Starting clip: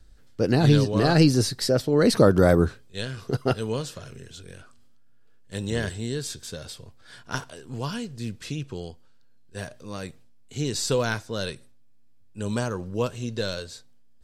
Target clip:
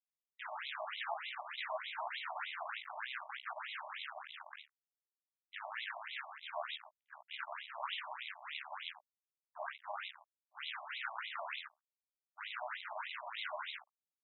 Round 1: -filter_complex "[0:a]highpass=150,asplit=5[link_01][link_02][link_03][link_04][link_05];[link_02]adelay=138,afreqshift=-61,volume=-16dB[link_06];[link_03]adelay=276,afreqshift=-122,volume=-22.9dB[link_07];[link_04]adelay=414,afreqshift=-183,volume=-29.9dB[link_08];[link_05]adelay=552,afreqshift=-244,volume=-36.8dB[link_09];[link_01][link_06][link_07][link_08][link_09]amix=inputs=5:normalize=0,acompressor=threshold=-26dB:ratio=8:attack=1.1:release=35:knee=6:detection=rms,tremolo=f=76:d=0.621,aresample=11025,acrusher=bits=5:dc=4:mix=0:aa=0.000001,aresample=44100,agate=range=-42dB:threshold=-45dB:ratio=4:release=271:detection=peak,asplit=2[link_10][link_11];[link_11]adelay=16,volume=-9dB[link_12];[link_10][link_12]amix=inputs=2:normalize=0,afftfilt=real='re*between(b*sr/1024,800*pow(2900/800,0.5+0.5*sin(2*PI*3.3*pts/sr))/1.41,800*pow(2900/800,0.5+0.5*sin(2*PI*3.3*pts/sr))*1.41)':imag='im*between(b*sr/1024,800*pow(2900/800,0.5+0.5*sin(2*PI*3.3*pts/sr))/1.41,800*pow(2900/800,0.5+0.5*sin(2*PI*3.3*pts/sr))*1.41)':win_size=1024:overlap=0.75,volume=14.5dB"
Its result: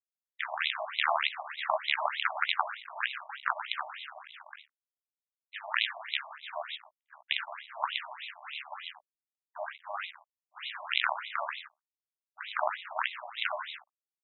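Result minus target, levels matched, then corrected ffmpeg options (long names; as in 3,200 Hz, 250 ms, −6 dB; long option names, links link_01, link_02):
downward compressor: peak gain reduction −8 dB
-filter_complex "[0:a]highpass=150,asplit=5[link_01][link_02][link_03][link_04][link_05];[link_02]adelay=138,afreqshift=-61,volume=-16dB[link_06];[link_03]adelay=276,afreqshift=-122,volume=-22.9dB[link_07];[link_04]adelay=414,afreqshift=-183,volume=-29.9dB[link_08];[link_05]adelay=552,afreqshift=-244,volume=-36.8dB[link_09];[link_01][link_06][link_07][link_08][link_09]amix=inputs=5:normalize=0,acompressor=threshold=-35dB:ratio=8:attack=1.1:release=35:knee=6:detection=rms,tremolo=f=76:d=0.621,aresample=11025,acrusher=bits=5:dc=4:mix=0:aa=0.000001,aresample=44100,agate=range=-42dB:threshold=-45dB:ratio=4:release=271:detection=peak,asplit=2[link_10][link_11];[link_11]adelay=16,volume=-9dB[link_12];[link_10][link_12]amix=inputs=2:normalize=0,afftfilt=real='re*between(b*sr/1024,800*pow(2900/800,0.5+0.5*sin(2*PI*3.3*pts/sr))/1.41,800*pow(2900/800,0.5+0.5*sin(2*PI*3.3*pts/sr))*1.41)':imag='im*between(b*sr/1024,800*pow(2900/800,0.5+0.5*sin(2*PI*3.3*pts/sr))/1.41,800*pow(2900/800,0.5+0.5*sin(2*PI*3.3*pts/sr))*1.41)':win_size=1024:overlap=0.75,volume=14.5dB"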